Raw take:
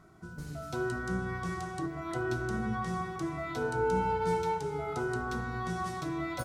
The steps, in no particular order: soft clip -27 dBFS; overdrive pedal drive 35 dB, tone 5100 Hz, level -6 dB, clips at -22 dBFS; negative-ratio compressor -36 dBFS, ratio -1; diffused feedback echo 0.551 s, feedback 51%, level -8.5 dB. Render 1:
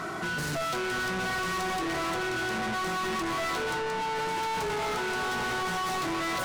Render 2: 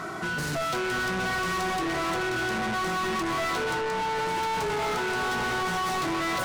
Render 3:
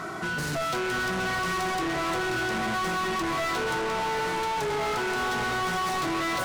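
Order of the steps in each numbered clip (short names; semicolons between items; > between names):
diffused feedback echo > negative-ratio compressor > overdrive pedal > soft clip; diffused feedback echo > soft clip > negative-ratio compressor > overdrive pedal; soft clip > negative-ratio compressor > diffused feedback echo > overdrive pedal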